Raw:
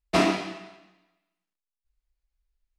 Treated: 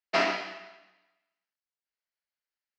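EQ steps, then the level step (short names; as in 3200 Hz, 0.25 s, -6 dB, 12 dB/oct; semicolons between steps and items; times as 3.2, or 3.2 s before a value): speaker cabinet 300–4700 Hz, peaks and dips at 330 Hz -9 dB, 480 Hz -3 dB, 760 Hz -4 dB, 1100 Hz -7 dB, 2500 Hz -5 dB, 3600 Hz -10 dB; low shelf 470 Hz -11.5 dB; +4.5 dB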